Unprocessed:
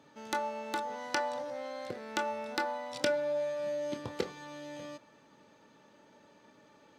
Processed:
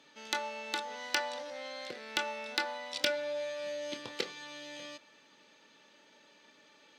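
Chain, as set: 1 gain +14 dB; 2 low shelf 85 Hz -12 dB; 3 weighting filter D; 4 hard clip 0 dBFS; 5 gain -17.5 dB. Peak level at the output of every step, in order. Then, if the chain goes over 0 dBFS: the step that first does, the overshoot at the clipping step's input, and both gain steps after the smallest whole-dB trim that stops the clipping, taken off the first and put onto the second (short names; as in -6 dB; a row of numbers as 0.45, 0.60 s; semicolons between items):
+1.5, +1.5, +9.0, 0.0, -17.5 dBFS; step 1, 9.0 dB; step 1 +5 dB, step 5 -8.5 dB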